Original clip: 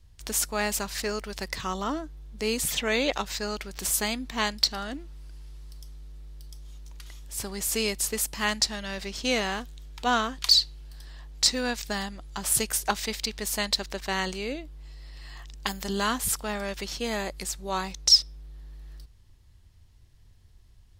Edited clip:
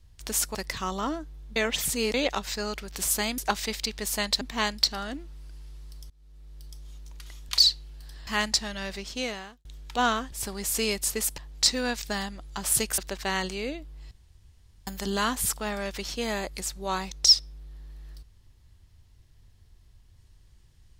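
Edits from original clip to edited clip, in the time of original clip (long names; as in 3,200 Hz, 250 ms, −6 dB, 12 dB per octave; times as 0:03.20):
0:00.55–0:01.38: remove
0:02.39–0:02.97: reverse
0:05.90–0:06.45: fade in, from −24 dB
0:07.29–0:08.35: swap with 0:10.40–0:11.18
0:08.94–0:09.73: fade out
0:12.78–0:13.81: move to 0:04.21
0:14.94–0:15.70: fill with room tone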